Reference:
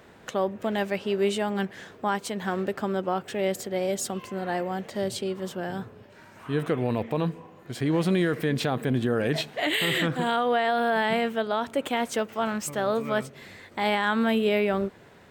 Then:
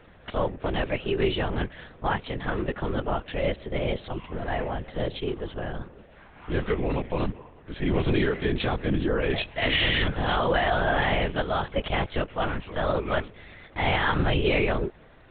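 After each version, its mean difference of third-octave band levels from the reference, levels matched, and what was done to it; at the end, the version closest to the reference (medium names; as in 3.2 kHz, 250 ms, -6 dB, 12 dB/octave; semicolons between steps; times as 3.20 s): 8.5 dB: dynamic bell 2.6 kHz, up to +4 dB, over -42 dBFS, Q 1.3; LPC vocoder at 8 kHz whisper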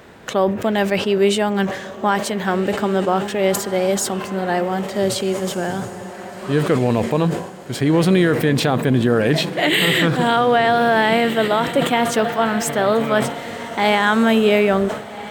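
4.0 dB: on a send: echo that smears into a reverb 1601 ms, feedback 42%, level -12.5 dB; on the sum: decay stretcher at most 84 dB/s; trim +8.5 dB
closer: second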